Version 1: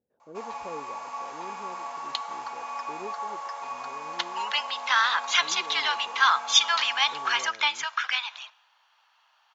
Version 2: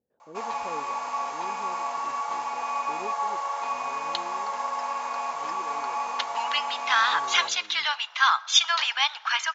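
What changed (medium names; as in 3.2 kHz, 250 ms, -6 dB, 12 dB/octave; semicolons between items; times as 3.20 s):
first sound +6.0 dB; second sound: entry +2.00 s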